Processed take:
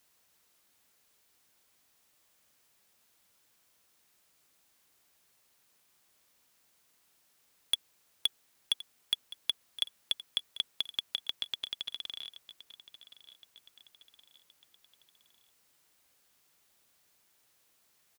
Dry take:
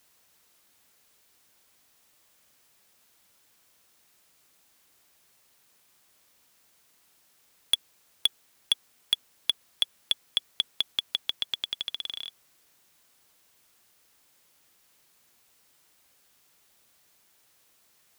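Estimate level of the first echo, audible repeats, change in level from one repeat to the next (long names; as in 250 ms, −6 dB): −17.0 dB, 3, −6.0 dB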